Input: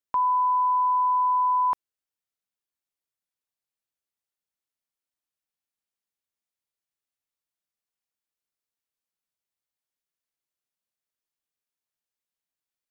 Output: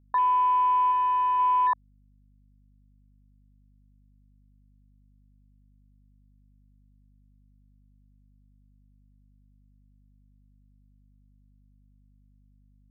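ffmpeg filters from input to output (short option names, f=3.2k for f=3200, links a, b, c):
-filter_complex "[0:a]asplit=3[a][b][c];[a]afade=t=out:st=0.91:d=0.02[d];[b]equalizer=f=510:w=1.9:g=-13,afade=t=in:st=0.91:d=0.02,afade=t=out:st=1.38:d=0.02[e];[c]afade=t=in:st=1.38:d=0.02[f];[d][e][f]amix=inputs=3:normalize=0,afwtdn=0.02,aeval=exprs='val(0)+0.00112*(sin(2*PI*50*n/s)+sin(2*PI*2*50*n/s)/2+sin(2*PI*3*50*n/s)/3+sin(2*PI*4*50*n/s)/4+sin(2*PI*5*50*n/s)/5)':c=same"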